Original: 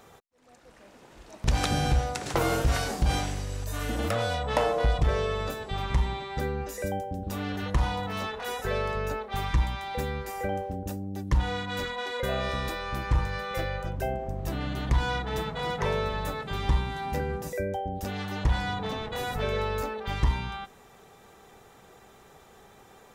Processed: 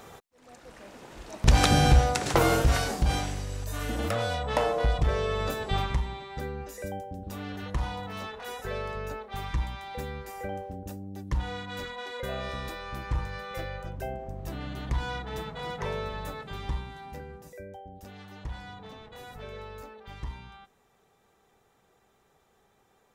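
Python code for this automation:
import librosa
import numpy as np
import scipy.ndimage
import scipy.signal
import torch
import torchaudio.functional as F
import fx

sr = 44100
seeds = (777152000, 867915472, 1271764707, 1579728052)

y = fx.gain(x, sr, db=fx.line((2.11, 5.5), (3.16, -1.0), (5.2, -1.0), (5.76, 5.0), (6.02, -5.0), (16.4, -5.0), (17.35, -13.0)))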